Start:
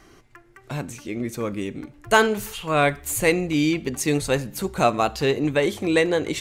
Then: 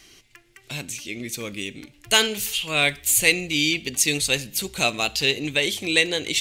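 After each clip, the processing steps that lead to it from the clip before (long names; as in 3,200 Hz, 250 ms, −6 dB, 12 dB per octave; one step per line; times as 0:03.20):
high shelf with overshoot 1,900 Hz +13.5 dB, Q 1.5
level −6 dB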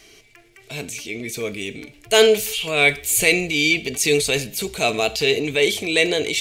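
transient designer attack −4 dB, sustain +4 dB
hollow resonant body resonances 440/650/2,300 Hz, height 13 dB, ringing for 65 ms
level +1 dB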